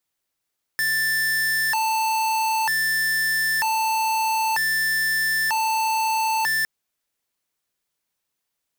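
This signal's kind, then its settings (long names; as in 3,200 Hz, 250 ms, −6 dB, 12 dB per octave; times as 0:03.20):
siren hi-lo 885–1,770 Hz 0.53 per second square −22 dBFS 5.86 s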